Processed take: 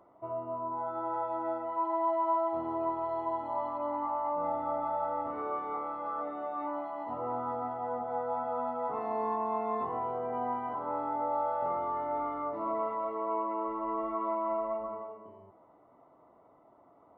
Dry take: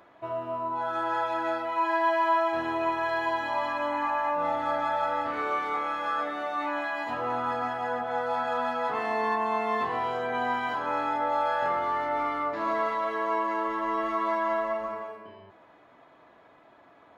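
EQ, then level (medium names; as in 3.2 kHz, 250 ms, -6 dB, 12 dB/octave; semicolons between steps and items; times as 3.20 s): Savitzky-Golay filter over 65 samples; -3.5 dB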